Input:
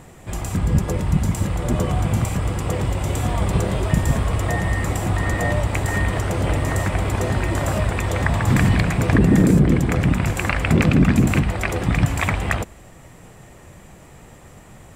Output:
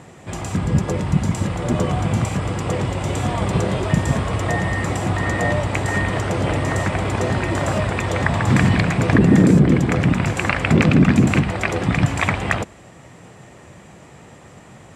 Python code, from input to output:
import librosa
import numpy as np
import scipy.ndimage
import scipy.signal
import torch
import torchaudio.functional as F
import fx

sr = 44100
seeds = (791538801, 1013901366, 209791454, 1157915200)

y = fx.bandpass_edges(x, sr, low_hz=100.0, high_hz=7400.0)
y = F.gain(torch.from_numpy(y), 2.5).numpy()